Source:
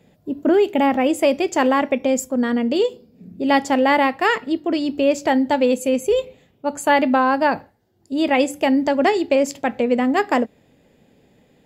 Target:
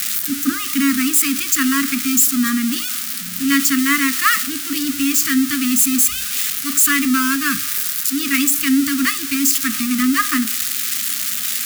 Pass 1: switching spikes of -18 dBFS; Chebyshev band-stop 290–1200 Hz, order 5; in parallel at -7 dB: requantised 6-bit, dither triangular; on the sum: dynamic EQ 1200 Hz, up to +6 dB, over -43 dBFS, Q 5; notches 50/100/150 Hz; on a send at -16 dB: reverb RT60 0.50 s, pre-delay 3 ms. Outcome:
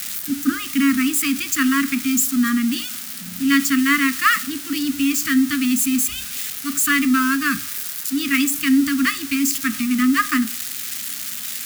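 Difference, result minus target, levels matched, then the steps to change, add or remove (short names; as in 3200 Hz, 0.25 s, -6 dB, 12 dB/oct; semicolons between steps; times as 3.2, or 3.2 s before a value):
switching spikes: distortion -7 dB
change: switching spikes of -11 dBFS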